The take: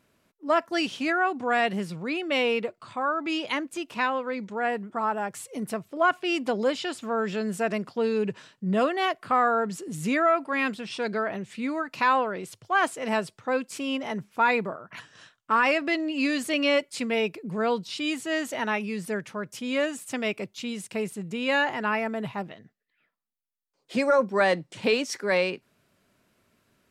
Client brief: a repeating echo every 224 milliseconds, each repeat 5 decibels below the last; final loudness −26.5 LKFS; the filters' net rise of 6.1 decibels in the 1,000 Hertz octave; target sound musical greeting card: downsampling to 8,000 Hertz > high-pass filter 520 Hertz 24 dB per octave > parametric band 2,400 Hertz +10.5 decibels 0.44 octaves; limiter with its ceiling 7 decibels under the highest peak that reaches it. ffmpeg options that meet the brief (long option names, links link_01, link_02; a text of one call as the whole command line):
ffmpeg -i in.wav -af "equalizer=frequency=1000:width_type=o:gain=7.5,alimiter=limit=-13.5dB:level=0:latency=1,aecho=1:1:224|448|672|896|1120|1344|1568:0.562|0.315|0.176|0.0988|0.0553|0.031|0.0173,aresample=8000,aresample=44100,highpass=frequency=520:width=0.5412,highpass=frequency=520:width=1.3066,equalizer=frequency=2400:width_type=o:width=0.44:gain=10.5,volume=-3.5dB" out.wav